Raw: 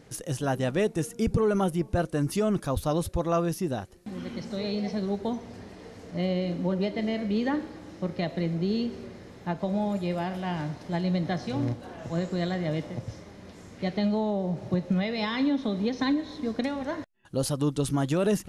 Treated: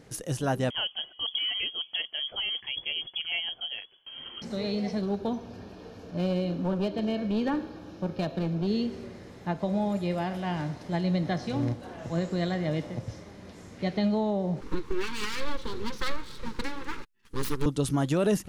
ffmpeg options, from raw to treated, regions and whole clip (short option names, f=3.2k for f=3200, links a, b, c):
-filter_complex "[0:a]asettb=1/sr,asplit=3[a][b][c];[a]atrim=end=0.704[d];[b]atrim=start=0.7:end=4.42,asetpts=PTS-STARTPTS,afade=t=in:d=0.004:c=qsin,afade=t=out:st=3.716:d=0.004:c=qsin,lowpass=f=2.9k:t=q:w=0.5098,lowpass=f=2.9k:t=q:w=0.6013,lowpass=f=2.9k:t=q:w=0.9,lowpass=f=2.9k:t=q:w=2.563,afreqshift=-3400,tiltshelf=f=910:g=8.5[e];[c]atrim=start=4.416[f];[d][e]acrossfade=d=0.004:c1=hsin:c2=qsin[g];[g][f]acrossfade=d=0.004:c1=qsin:c2=hsin,asettb=1/sr,asplit=3[h][i][j];[h]atrim=end=5.014[k];[i]atrim=start=5.01:end=8.67,asetpts=PTS-STARTPTS,afade=t=in:d=0.004:c=qsin,afade=t=out:st=3.656:d=0.004:c=qsin,equalizer=f=8.5k:t=o:w=0.55:g=-13,aeval=exprs='clip(val(0),-1,0.0562)':c=same,asuperstop=centerf=2000:order=4:qfactor=5.4[l];[j]atrim=start=8.666[m];[k][l]acrossfade=d=0.004:c1=hsin:c2=qsin[n];[n][m]acrossfade=d=0.004:c1=qsin:c2=hsin,asettb=1/sr,asplit=3[o][p][q];[o]atrim=end=14.614[r];[p]atrim=start=14.61:end=17.66,asetpts=PTS-STARTPTS,afade=t=in:d=0.004:c=qsin,afade=t=out:st=3.046:d=0.004:c=qsin,aecho=1:1:6.8:0.37,atrim=end_sample=134505,aeval=exprs='abs(val(0))':c=same,asuperstop=centerf=670:order=4:qfactor=1.5[s];[q]atrim=start=17.656[t];[r][s]acrossfade=d=0.004:c1=hsin:c2=qsin[u];[u][t]acrossfade=d=0.004:c1=qsin:c2=hsin"